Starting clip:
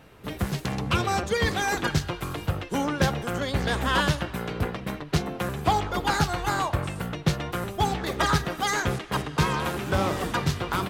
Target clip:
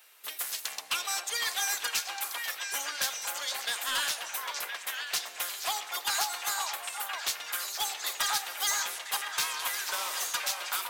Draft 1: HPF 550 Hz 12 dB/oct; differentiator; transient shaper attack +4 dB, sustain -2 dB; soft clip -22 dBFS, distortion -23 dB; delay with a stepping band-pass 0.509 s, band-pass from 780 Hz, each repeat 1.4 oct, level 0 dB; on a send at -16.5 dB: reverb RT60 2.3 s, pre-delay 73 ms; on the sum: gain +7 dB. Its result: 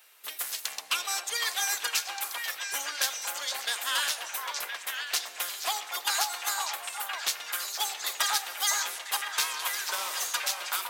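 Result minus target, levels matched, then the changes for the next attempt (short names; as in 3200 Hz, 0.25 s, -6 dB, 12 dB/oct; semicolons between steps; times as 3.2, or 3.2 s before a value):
soft clip: distortion -9 dB
change: soft clip -29.5 dBFS, distortion -13 dB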